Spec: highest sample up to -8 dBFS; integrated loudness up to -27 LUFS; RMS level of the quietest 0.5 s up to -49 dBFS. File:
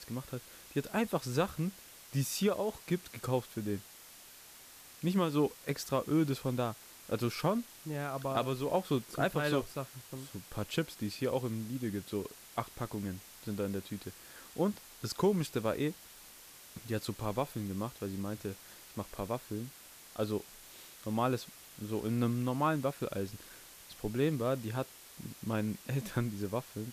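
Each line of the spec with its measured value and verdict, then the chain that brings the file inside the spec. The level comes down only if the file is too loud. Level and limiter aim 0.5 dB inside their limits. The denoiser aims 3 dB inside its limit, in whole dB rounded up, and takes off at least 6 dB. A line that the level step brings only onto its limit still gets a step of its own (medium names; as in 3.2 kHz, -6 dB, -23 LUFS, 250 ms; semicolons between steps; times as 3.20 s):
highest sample -19.0 dBFS: pass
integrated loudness -35.5 LUFS: pass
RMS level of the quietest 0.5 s -54 dBFS: pass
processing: none needed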